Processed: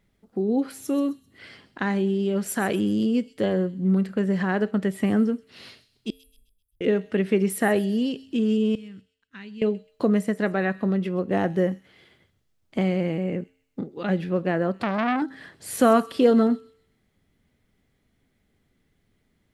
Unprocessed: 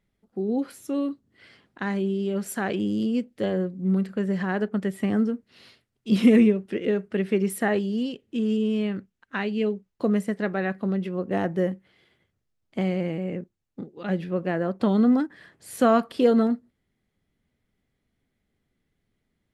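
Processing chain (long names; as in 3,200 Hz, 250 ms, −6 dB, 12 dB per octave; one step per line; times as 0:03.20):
0:06.10–0:06.81: inverse Chebyshev band-stop filter 190–4,800 Hz, stop band 70 dB
0:08.75–0:09.62: guitar amp tone stack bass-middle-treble 6-0-2
in parallel at +1 dB: downward compressor, threshold −36 dBFS, peak gain reduction 20 dB
on the sum: tuned comb filter 89 Hz, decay 0.6 s, harmonics odd, mix 40%
on a send: delay with a high-pass on its return 130 ms, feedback 38%, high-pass 4,300 Hz, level −12 dB
0:14.75–0:15.22: on the sum: saturating transformer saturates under 1,700 Hz
level +4.5 dB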